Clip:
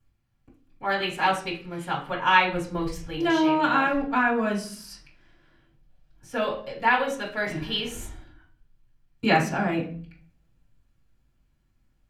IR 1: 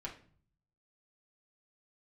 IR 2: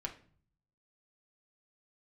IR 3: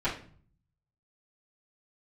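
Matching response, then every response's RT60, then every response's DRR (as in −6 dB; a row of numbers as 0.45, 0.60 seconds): 3; 0.45, 0.45, 0.45 seconds; −3.0, 1.0, −12.5 decibels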